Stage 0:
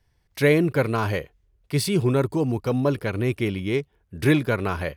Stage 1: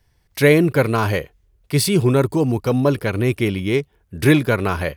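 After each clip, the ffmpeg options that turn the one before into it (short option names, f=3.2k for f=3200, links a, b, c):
-af "highshelf=f=7.5k:g=5,volume=5dB"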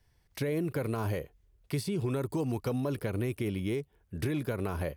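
-filter_complex "[0:a]alimiter=limit=-10.5dB:level=0:latency=1,acrossover=split=870|7900[a][b][c];[a]acompressor=threshold=-23dB:ratio=4[d];[b]acompressor=threshold=-38dB:ratio=4[e];[c]acompressor=threshold=-44dB:ratio=4[f];[d][e][f]amix=inputs=3:normalize=0,volume=-6.5dB"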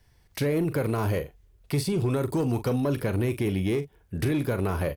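-filter_complex "[0:a]asplit=2[a][b];[b]adelay=42,volume=-12dB[c];[a][c]amix=inputs=2:normalize=0,asoftclip=type=tanh:threshold=-24dB,volume=7dB"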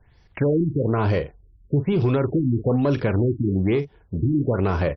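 -af "afftfilt=real='re*lt(b*sr/1024,330*pow(6100/330,0.5+0.5*sin(2*PI*1.1*pts/sr)))':imag='im*lt(b*sr/1024,330*pow(6100/330,0.5+0.5*sin(2*PI*1.1*pts/sr)))':win_size=1024:overlap=0.75,volume=5.5dB"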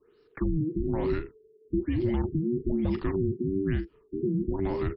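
-af "afreqshift=-480,volume=-7dB"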